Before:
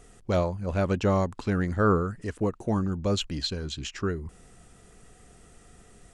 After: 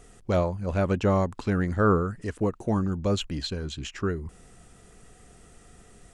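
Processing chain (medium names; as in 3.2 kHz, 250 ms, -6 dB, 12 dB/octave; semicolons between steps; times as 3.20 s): dynamic bell 4.9 kHz, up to -5 dB, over -47 dBFS, Q 1.1; trim +1 dB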